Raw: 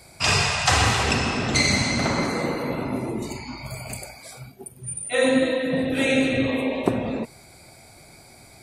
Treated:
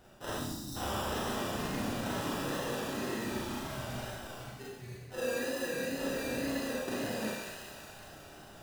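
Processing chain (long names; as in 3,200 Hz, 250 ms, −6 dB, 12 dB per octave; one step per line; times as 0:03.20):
low-pass filter 6,000 Hz 24 dB per octave
sample-rate reduction 2,200 Hz, jitter 0%
low-shelf EQ 260 Hz −5.5 dB
on a send: feedback echo with a high-pass in the loop 185 ms, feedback 71%, high-pass 730 Hz, level −12 dB
on the sum: tape wow and flutter 61 cents
reversed playback
downward compressor 6 to 1, threshold −33 dBFS, peak gain reduction 16.5 dB
reversed playback
gain on a spectral selection 0:00.33–0:00.76, 360–3,600 Hz −25 dB
four-comb reverb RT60 0.86 s, combs from 29 ms, DRR −5.5 dB
level −6 dB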